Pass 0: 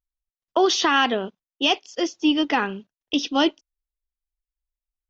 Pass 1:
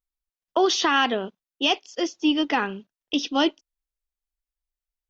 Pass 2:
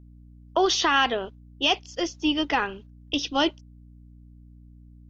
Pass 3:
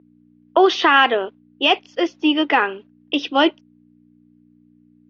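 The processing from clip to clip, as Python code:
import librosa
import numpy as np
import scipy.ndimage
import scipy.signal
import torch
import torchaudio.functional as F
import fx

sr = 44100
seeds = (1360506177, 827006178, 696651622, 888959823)

y1 = fx.peak_eq(x, sr, hz=86.0, db=-7.0, octaves=0.7)
y1 = y1 * librosa.db_to_amplitude(-1.5)
y2 = fx.low_shelf_res(y1, sr, hz=130.0, db=14.0, q=3.0)
y2 = fx.add_hum(y2, sr, base_hz=60, snr_db=21)
y3 = scipy.signal.sosfilt(scipy.signal.cheby1(2, 1.0, [320.0, 2500.0], 'bandpass', fs=sr, output='sos'), y2)
y3 = y3 * librosa.db_to_amplitude(8.5)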